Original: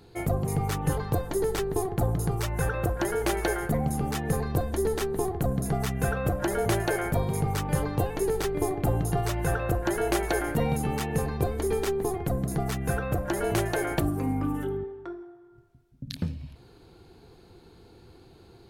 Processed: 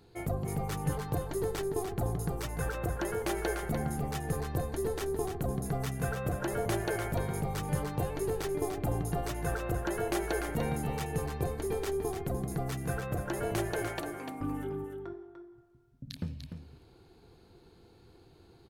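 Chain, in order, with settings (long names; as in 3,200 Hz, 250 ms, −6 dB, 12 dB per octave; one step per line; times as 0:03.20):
0:13.88–0:14.41: meter weighting curve A
single-tap delay 296 ms −7.5 dB
level −6.5 dB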